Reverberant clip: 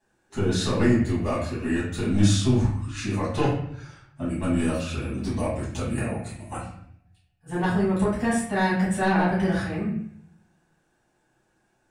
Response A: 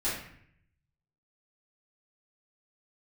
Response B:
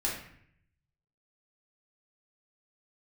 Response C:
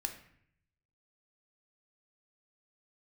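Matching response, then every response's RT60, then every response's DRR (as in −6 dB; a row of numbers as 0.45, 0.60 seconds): A; 0.65, 0.65, 0.65 seconds; −11.0, −4.5, 5.0 decibels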